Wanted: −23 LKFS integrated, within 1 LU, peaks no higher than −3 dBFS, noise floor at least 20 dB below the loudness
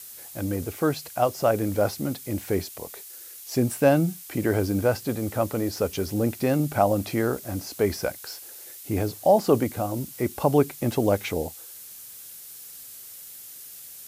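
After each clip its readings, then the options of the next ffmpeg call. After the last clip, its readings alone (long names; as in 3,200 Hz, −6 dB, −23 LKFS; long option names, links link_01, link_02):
background noise floor −43 dBFS; target noise floor −46 dBFS; integrated loudness −25.5 LKFS; sample peak −7.0 dBFS; target loudness −23.0 LKFS
→ -af "afftdn=noise_reduction=6:noise_floor=-43"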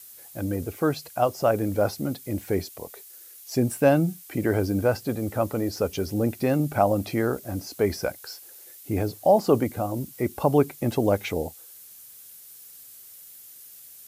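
background noise floor −47 dBFS; integrated loudness −25.5 LKFS; sample peak −7.0 dBFS; target loudness −23.0 LKFS
→ -af "volume=2.5dB"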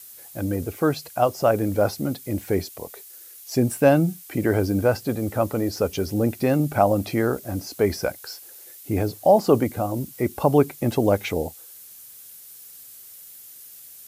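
integrated loudness −23.0 LKFS; sample peak −4.5 dBFS; background noise floor −45 dBFS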